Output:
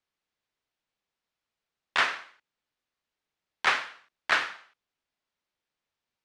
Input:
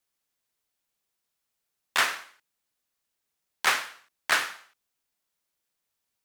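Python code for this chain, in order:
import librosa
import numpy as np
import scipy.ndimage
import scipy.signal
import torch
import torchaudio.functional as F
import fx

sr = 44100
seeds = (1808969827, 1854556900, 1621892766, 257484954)

y = scipy.signal.sosfilt(scipy.signal.butter(2, 4000.0, 'lowpass', fs=sr, output='sos'), x)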